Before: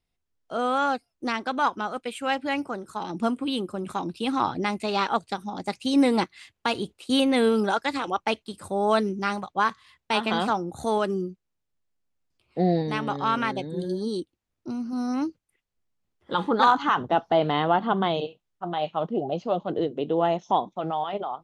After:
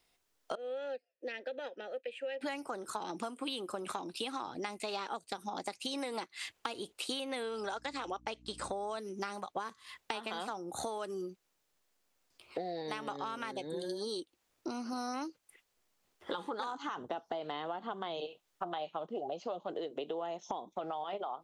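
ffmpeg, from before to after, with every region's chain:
-filter_complex "[0:a]asettb=1/sr,asplit=3[s0][s1][s2];[s0]atrim=end=0.554[s3];[s1]atrim=start=0.55:end=2.41,asetpts=PTS-STARTPTS,afade=t=in:d=0.004:c=qsin,afade=t=out:st=1.856:d=0.004:c=qsin,highshelf=f=4100:g=-6.5,acrossover=split=290|3000[s4][s5][s6];[s5]acompressor=threshold=0.00316:ratio=1.5:attack=3.2:release=140:knee=2.83:detection=peak[s7];[s4][s7][s6]amix=inputs=3:normalize=0,asplit=3[s8][s9][s10];[s8]bandpass=f=530:t=q:w=8,volume=1[s11];[s9]bandpass=f=1840:t=q:w=8,volume=0.501[s12];[s10]bandpass=f=2480:t=q:w=8,volume=0.355[s13];[s11][s12][s13]amix=inputs=3:normalize=0[s14];[s2]atrim=start=2.406[s15];[s3][s14]acrossfade=d=0.004:c1=hsin:c2=qsin[s16];[s16][s15]acrossfade=d=0.004:c1=qsin:c2=hsin,asettb=1/sr,asplit=3[s17][s18][s19];[s17]atrim=end=7.434[s20];[s18]atrim=start=7.43:end=8.98,asetpts=PTS-STARTPTS,afade=t=in:d=0.004:c=qsin,afade=t=out:st=1.546:d=0.004:c=qsin,lowpass=f=7800:w=0.5412,lowpass=f=7800:w=1.3066,aeval=exprs='val(0)+0.00794*(sin(2*PI*60*n/s)+sin(2*PI*2*60*n/s)/2+sin(2*PI*3*60*n/s)/3+sin(2*PI*4*60*n/s)/4+sin(2*PI*5*60*n/s)/5)':c=same[s21];[s19]atrim=start=8.976[s22];[s20][s21]acrossfade=d=0.004:c1=hsin:c2=qsin[s23];[s23][s22]acrossfade=d=0.004:c1=qsin:c2=hsin,acrossover=split=490|6300[s24][s25][s26];[s24]acompressor=threshold=0.0141:ratio=4[s27];[s25]acompressor=threshold=0.0158:ratio=4[s28];[s26]acompressor=threshold=0.002:ratio=4[s29];[s27][s28][s29]amix=inputs=3:normalize=0,bass=f=250:g=-15,treble=f=4000:g=2,acompressor=threshold=0.00447:ratio=6,volume=3.35"

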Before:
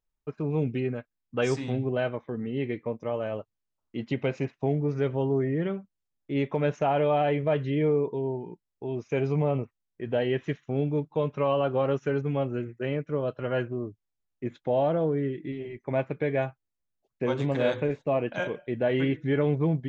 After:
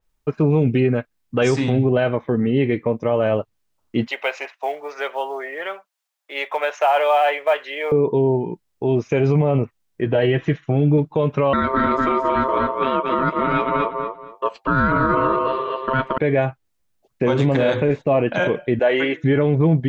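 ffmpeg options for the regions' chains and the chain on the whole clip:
-filter_complex "[0:a]asettb=1/sr,asplit=3[s0][s1][s2];[s0]atrim=end=4.074[s3];[s1]atrim=start=4.07:end=7.92,asetpts=PTS-STARTPTS,afade=t=in:d=0.004:c=qsin,afade=t=out:st=3.846:d=0.004:c=qsin,highpass=f=670:w=0.5412,highpass=f=670:w=1.3066,acrusher=bits=8:mode=log:mix=0:aa=0.000001[s4];[s2]atrim=start=7.916[s5];[s3][s4]acrossfade=d=0.004:c1=hsin:c2=qsin[s6];[s6][s5]acrossfade=d=0.004:c1=qsin:c2=hsin,asettb=1/sr,asplit=3[s7][s8][s9];[s7]atrim=end=10.044[s10];[s8]atrim=start=10.04:end=10.98,asetpts=PTS-STARTPTS,afade=t=in:d=0.004:c=qsin,afade=t=out:st=0.936:d=0.004:c=qsin,lowpass=f=3900:p=1,bandreject=f=500:w=16,aecho=1:1:6.2:0.49,atrim=end_sample=41454[s11];[s9]atrim=start=10.976[s12];[s10][s11]acrossfade=d=0.004:c1=hsin:c2=qsin[s13];[s13][s12]acrossfade=d=0.004:c1=qsin:c2=hsin,asettb=1/sr,asplit=3[s14][s15][s16];[s14]atrim=end=11.534[s17];[s15]atrim=start=11.53:end=16.18,asetpts=PTS-STARTPTS,afade=t=in:d=0.004:c=qsin,afade=t=out:st=4.646:d=0.004:c=qsin,aeval=exprs='val(0)*sin(2*PI*790*n/s)':c=same,aecho=1:1:233|466|699:0.596|0.131|0.0288,atrim=end_sample=205065[s18];[s16]atrim=start=16.176[s19];[s17][s18]acrossfade=d=0.004:c1=hsin:c2=qsin[s20];[s20][s19]acrossfade=d=0.004:c1=qsin:c2=hsin,asettb=1/sr,asplit=3[s21][s22][s23];[s21]atrim=end=18.794[s24];[s22]atrim=start=18.79:end=19.24,asetpts=PTS-STARTPTS,afade=t=in:d=0.004:c=qsin,afade=t=out:st=0.446:d=0.004:c=qsin,highpass=520,equalizer=f=6500:t=o:w=0.41:g=10,acrossover=split=3500[s25][s26];[s26]acompressor=threshold=0.00224:ratio=4:attack=1:release=60[s27];[s25][s27]amix=inputs=2:normalize=0[s28];[s23]atrim=start=19.236[s29];[s24][s28]acrossfade=d=0.004:c1=hsin:c2=qsin[s30];[s30][s29]acrossfade=d=0.004:c1=qsin:c2=hsin,alimiter=level_in=11.2:limit=0.891:release=50:level=0:latency=1,adynamicequalizer=threshold=0.0158:dfrequency=4500:dqfactor=0.7:tfrequency=4500:tqfactor=0.7:attack=5:release=100:ratio=0.375:range=2.5:mode=cutabove:tftype=highshelf,volume=0.422"

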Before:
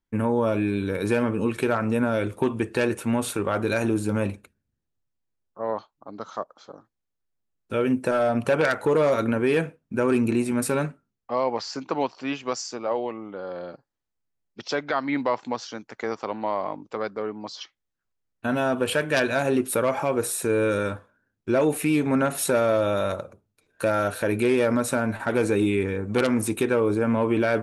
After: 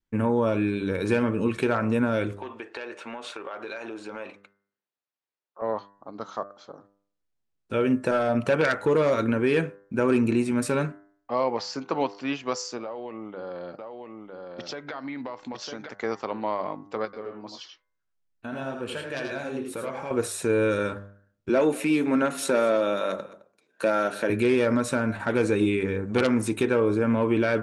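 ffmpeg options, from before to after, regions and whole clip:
-filter_complex "[0:a]asettb=1/sr,asplit=3[s0][s1][s2];[s0]atrim=end=2.374[s3];[s1]atrim=start=2.37:end=5.62,asetpts=PTS-STARTPTS,afade=t=in:d=0.004:c=qsin,afade=t=out:st=3.246:d=0.004:c=qsin,highpass=550,lowpass=4400,acompressor=threshold=0.0251:ratio=5:attack=3.2:release=140:knee=1:detection=peak[s4];[s2]atrim=start=5.616[s5];[s3][s4]acrossfade=d=0.004:c1=hsin:c2=qsin[s6];[s6][s5]acrossfade=d=0.004:c1=qsin:c2=hsin,asettb=1/sr,asplit=3[s7][s8][s9];[s7]atrim=end=12.834[s10];[s8]atrim=start=12.83:end=15.89,asetpts=PTS-STARTPTS,afade=t=in:d=0.004:c=qsin,afade=t=out:st=3.056:d=0.004:c=qsin,acompressor=threshold=0.0282:ratio=6:attack=3.2:release=140:knee=1:detection=peak,aecho=1:1:955:0.596,atrim=end_sample=134946[s11];[s9]atrim=start=15.886[s12];[s10][s11]acrossfade=d=0.004:c1=hsin:c2=qsin[s13];[s13][s12]acrossfade=d=0.004:c1=qsin:c2=hsin,asettb=1/sr,asplit=3[s14][s15][s16];[s14]atrim=end=17.054[s17];[s15]atrim=start=17.05:end=20.11,asetpts=PTS-STARTPTS,afade=t=in:d=0.004:c=qsin,afade=t=out:st=3.056:d=0.004:c=qsin,flanger=delay=5.4:depth=7:regen=61:speed=1.8:shape=sinusoidal,acompressor=threshold=0.0112:ratio=1.5:attack=3.2:release=140:knee=1:detection=peak,aecho=1:1:82|104:0.501|0.316,atrim=end_sample=134946[s18];[s16]atrim=start=20.106[s19];[s17][s18]acrossfade=d=0.004:c1=hsin:c2=qsin[s20];[s20][s19]acrossfade=d=0.004:c1=qsin:c2=hsin,asettb=1/sr,asplit=3[s21][s22][s23];[s21]atrim=end=21.494[s24];[s22]atrim=start=21.49:end=24.3,asetpts=PTS-STARTPTS,afade=t=in:d=0.004:c=qsin,afade=t=out:st=2.806:d=0.004:c=qsin,highpass=f=180:w=0.5412,highpass=f=180:w=1.3066,aecho=1:1:213:0.0891,atrim=end_sample=123921[s25];[s23]atrim=start=24.296[s26];[s24][s25]acrossfade=d=0.004:c1=hsin:c2=qsin[s27];[s27][s26]acrossfade=d=0.004:c1=qsin:c2=hsin,lowpass=7500,bandreject=f=99.85:t=h:w=4,bandreject=f=199.7:t=h:w=4,bandreject=f=299.55:t=h:w=4,bandreject=f=399.4:t=h:w=4,bandreject=f=499.25:t=h:w=4,bandreject=f=599.1:t=h:w=4,bandreject=f=698.95:t=h:w=4,bandreject=f=798.8:t=h:w=4,bandreject=f=898.65:t=h:w=4,bandreject=f=998.5:t=h:w=4,bandreject=f=1098.35:t=h:w=4,bandreject=f=1198.2:t=h:w=4,bandreject=f=1298.05:t=h:w=4,bandreject=f=1397.9:t=h:w=4,bandreject=f=1497.75:t=h:w=4,bandreject=f=1597.6:t=h:w=4,bandreject=f=1697.45:t=h:w=4,bandreject=f=1797.3:t=h:w=4,bandreject=f=1897.15:t=h:w=4,bandreject=f=1997:t=h:w=4,bandreject=f=2096.85:t=h:w=4,adynamicequalizer=threshold=0.0112:dfrequency=750:dqfactor=2.4:tfrequency=750:tqfactor=2.4:attack=5:release=100:ratio=0.375:range=2.5:mode=cutabove:tftype=bell"

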